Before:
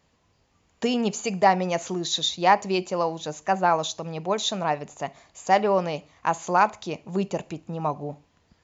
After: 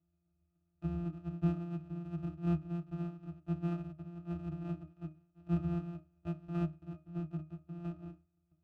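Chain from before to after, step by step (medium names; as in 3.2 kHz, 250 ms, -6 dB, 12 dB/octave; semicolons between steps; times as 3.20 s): sorted samples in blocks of 256 samples; pitch-class resonator D#, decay 0.26 s; trim -1 dB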